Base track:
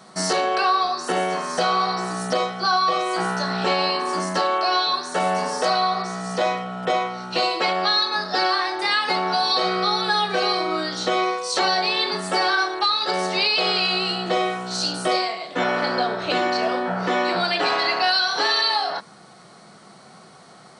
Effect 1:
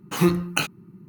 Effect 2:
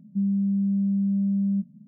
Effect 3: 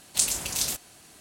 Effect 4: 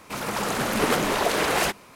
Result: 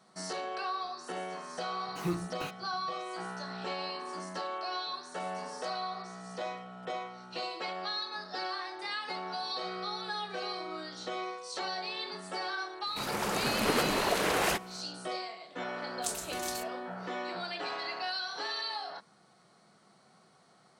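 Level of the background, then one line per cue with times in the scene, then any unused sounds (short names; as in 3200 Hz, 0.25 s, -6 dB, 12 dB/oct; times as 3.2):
base track -16 dB
1.84 add 1 -13.5 dB + slew limiter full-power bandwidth 150 Hz
12.86 add 4 -6 dB
15.87 add 3 -12.5 dB + expander -43 dBFS
not used: 2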